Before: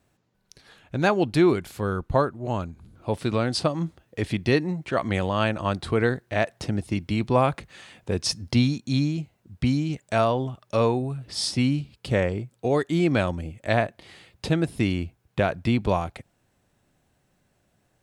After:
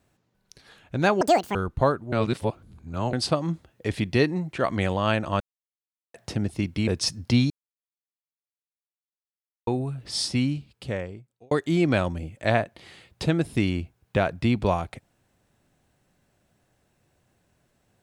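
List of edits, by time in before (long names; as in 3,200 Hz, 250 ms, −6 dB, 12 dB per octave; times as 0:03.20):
0:01.21–0:01.88: play speed 196%
0:02.45–0:03.46: reverse
0:05.73–0:06.47: silence
0:07.20–0:08.10: remove
0:08.73–0:10.90: silence
0:11.41–0:12.74: fade out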